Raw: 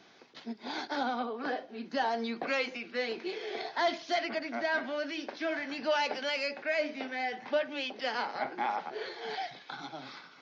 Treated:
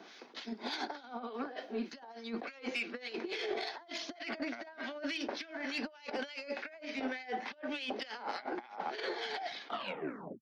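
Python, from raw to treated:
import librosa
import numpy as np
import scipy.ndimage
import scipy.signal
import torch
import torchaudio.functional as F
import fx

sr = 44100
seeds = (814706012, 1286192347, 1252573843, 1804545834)

y = fx.tape_stop_end(x, sr, length_s=0.78)
y = scipy.signal.sosfilt(scipy.signal.butter(4, 210.0, 'highpass', fs=sr, output='sos'), y)
y = fx.over_compress(y, sr, threshold_db=-39.0, ratio=-0.5)
y = fx.harmonic_tremolo(y, sr, hz=3.4, depth_pct=70, crossover_hz=1500.0)
y = 10.0 ** (-28.0 / 20.0) * np.tanh(y / 10.0 ** (-28.0 / 20.0))
y = fx.attack_slew(y, sr, db_per_s=350.0)
y = y * 10.0 ** (3.0 / 20.0)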